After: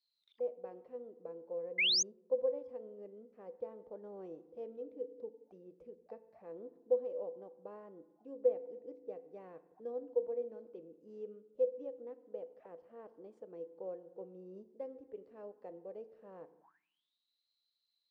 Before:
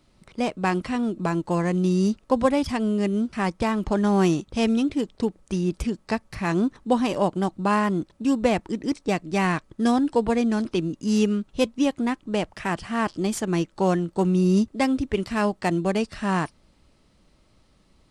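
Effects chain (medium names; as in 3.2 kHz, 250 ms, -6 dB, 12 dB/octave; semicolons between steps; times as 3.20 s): FDN reverb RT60 1.2 s, low-frequency decay 1.5×, high-frequency decay 0.6×, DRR 12.5 dB; auto-wah 500–4400 Hz, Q 22, down, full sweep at -27 dBFS; painted sound rise, 1.78–2.03 s, 2–6.8 kHz -26 dBFS; trim -3.5 dB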